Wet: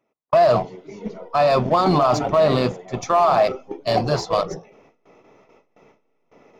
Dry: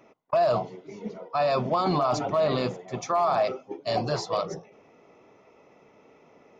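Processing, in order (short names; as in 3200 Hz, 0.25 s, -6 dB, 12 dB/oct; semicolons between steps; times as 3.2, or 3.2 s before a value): gate with hold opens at -46 dBFS; in parallel at -4 dB: backlash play -22.5 dBFS; on the sum: gain +4 dB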